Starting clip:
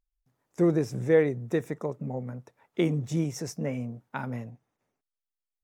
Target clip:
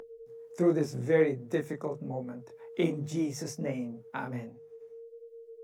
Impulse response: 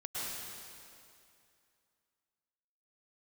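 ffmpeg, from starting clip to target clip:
-filter_complex "[0:a]aeval=exprs='val(0)+0.00355*sin(2*PI*460*n/s)':c=same,acrossover=split=130|800[a][b][c];[a]acompressor=threshold=-47dB:ratio=6[d];[d][b][c]amix=inputs=3:normalize=0,bandreject=f=50:t=h:w=6,bandreject=f=100:t=h:w=6,bandreject=f=150:t=h:w=6,flanger=delay=20:depth=6.1:speed=1.3,acompressor=mode=upward:threshold=-43dB:ratio=2.5,volume=1.5dB"

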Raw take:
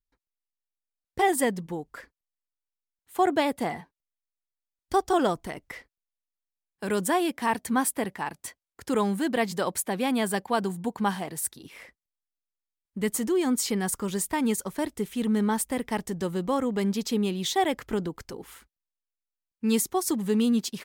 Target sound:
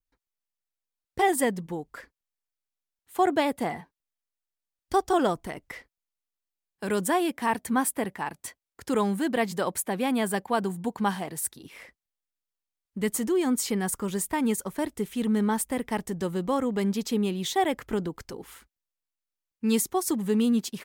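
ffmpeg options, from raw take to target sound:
-af "adynamicequalizer=threshold=0.00355:dfrequency=4700:dqfactor=1.1:tfrequency=4700:tqfactor=1.1:attack=5:release=100:ratio=0.375:range=2:mode=cutabove:tftype=bell"

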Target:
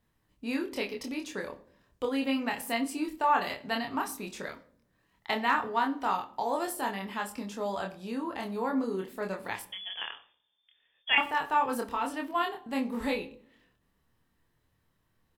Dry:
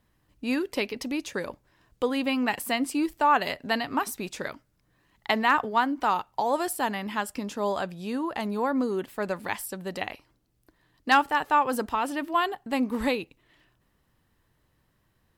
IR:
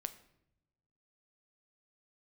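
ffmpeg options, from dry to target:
-filter_complex "[0:a]asettb=1/sr,asplit=3[a][b][c];[a]atrim=end=9.624[d];[b]atrim=start=9.62:end=11.18,asetpts=PTS-STARTPTS,afade=t=in:d=0.004:c=qsin,afade=t=out:st=1.556:d=0.004:c=qsin,lowpass=f=3.1k:t=q:w=0.5098,lowpass=f=3.1k:t=q:w=0.6013,lowpass=f=3.1k:t=q:w=0.9,lowpass=f=3.1k:t=q:w=2.563,afreqshift=-3600[e];[c]atrim=start=11.176[f];[d][e]acrossfade=d=0.004:c1=hsin:c2=qsin[g];[g][f]acrossfade=d=0.004:c1=qsin:c2=hsin,asplit=2[h][i];[i]adelay=26,volume=-3dB[j];[h][j]amix=inputs=2:normalize=0[k];[1:a]atrim=start_sample=2205,asetrate=70560,aresample=44100[l];[k][l]afir=irnorm=-1:irlink=0"

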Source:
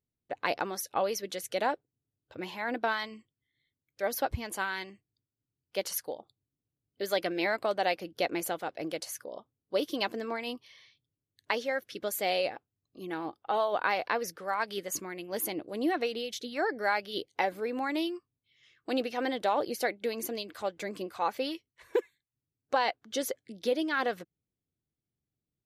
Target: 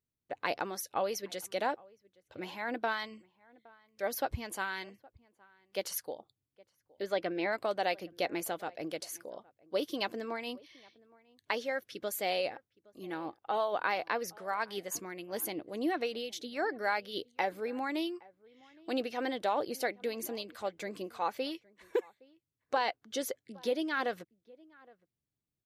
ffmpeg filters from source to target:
-filter_complex "[0:a]asplit=3[a][b][c];[a]afade=t=out:st=7.02:d=0.02[d];[b]aemphasis=mode=reproduction:type=75fm,afade=t=in:st=7.02:d=0.02,afade=t=out:st=7.51:d=0.02[e];[c]afade=t=in:st=7.51:d=0.02[f];[d][e][f]amix=inputs=3:normalize=0,asplit=2[g][h];[h]adelay=816.3,volume=-24dB,highshelf=f=4k:g=-18.4[i];[g][i]amix=inputs=2:normalize=0,volume=-3dB"

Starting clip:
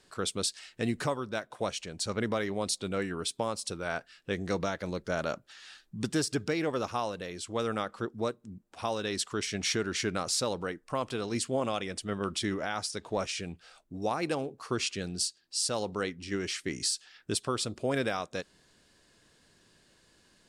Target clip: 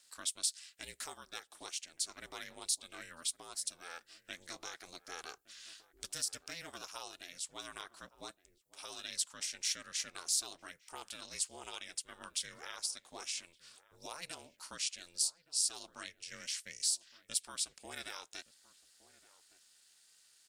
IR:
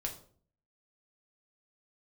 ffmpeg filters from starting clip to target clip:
-filter_complex "[0:a]aderivative,asplit=2[a][b];[b]acompressor=threshold=-49dB:ratio=6,volume=-0.5dB[c];[a][c]amix=inputs=2:normalize=0,aeval=exprs='val(0)*sin(2*PI*170*n/s)':c=same,asplit=2[d][e];[e]adelay=1166,volume=-18dB,highshelf=f=4k:g=-26.2[f];[d][f]amix=inputs=2:normalize=0,volume=1dB"

